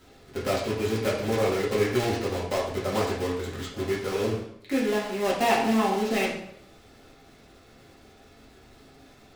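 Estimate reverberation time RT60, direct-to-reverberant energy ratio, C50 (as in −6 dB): 0.70 s, −6.0 dB, 4.5 dB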